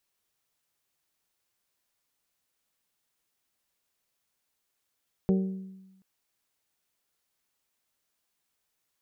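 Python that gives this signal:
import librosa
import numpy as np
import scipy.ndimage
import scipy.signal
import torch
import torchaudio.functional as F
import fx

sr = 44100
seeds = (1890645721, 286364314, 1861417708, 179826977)

y = fx.strike_glass(sr, length_s=0.73, level_db=-19.5, body='bell', hz=190.0, decay_s=1.08, tilt_db=6, modes=5)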